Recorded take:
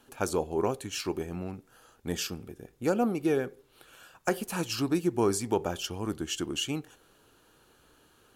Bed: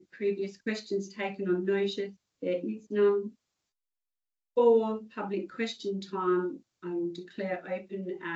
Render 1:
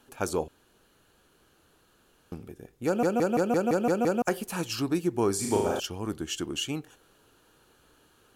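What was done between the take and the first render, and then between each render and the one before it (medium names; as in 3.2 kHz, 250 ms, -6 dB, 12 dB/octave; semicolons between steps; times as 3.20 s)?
0.48–2.32 s: room tone; 2.86 s: stutter in place 0.17 s, 8 plays; 5.35–5.80 s: flutter echo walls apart 6.5 m, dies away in 0.9 s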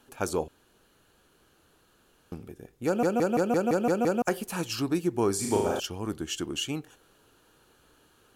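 no audible change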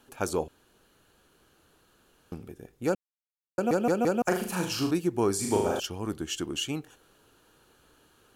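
2.95–3.58 s: mute; 4.24–4.91 s: flutter echo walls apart 6.6 m, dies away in 0.47 s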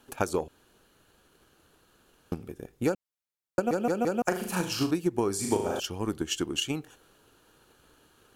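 transient shaper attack +8 dB, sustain +1 dB; compression 2:1, threshold -26 dBFS, peak gain reduction 6.5 dB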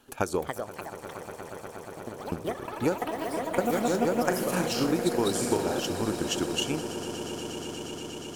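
echo with a slow build-up 119 ms, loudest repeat 8, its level -16 dB; ever faster or slower copies 335 ms, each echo +5 st, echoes 3, each echo -6 dB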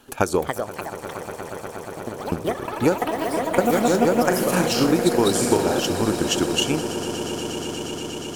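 trim +7.5 dB; peak limiter -2 dBFS, peak gain reduction 2 dB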